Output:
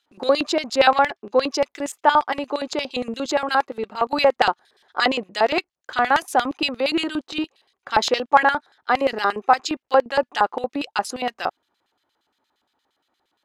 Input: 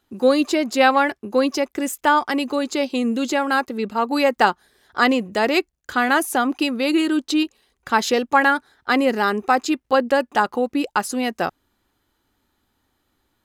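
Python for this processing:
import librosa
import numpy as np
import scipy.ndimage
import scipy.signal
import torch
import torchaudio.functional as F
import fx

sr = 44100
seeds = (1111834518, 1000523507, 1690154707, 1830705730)

y = fx.lowpass(x, sr, hz=6900.0, slope=12, at=(0.99, 1.42))
y = fx.filter_lfo_bandpass(y, sr, shape='square', hz=8.6, low_hz=750.0, high_hz=3700.0, q=1.2)
y = F.gain(torch.from_numpy(y), 4.5).numpy()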